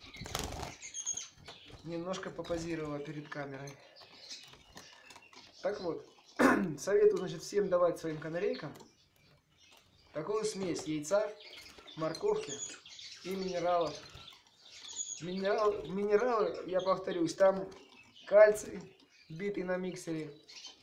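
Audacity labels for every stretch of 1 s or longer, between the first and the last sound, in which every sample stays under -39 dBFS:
8.760000	10.160000	silence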